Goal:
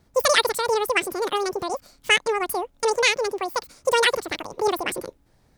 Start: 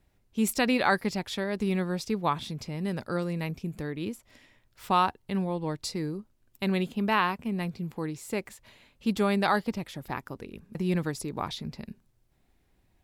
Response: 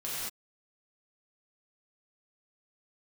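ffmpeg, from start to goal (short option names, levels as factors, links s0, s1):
-af "asetrate=103194,aresample=44100,volume=2.11"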